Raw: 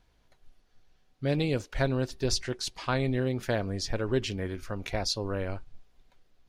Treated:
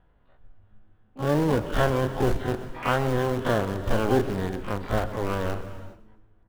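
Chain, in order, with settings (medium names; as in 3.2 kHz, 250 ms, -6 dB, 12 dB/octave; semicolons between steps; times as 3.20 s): every event in the spectrogram widened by 60 ms; steep low-pass 1.7 kHz 36 dB/octave; in parallel at -11 dB: bit crusher 4-bit; on the sum: harmony voices +12 st -8 dB; on a send: frequency-shifting echo 127 ms, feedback 41%, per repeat -110 Hz, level -16 dB; on the sum: gated-style reverb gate 440 ms flat, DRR 11.5 dB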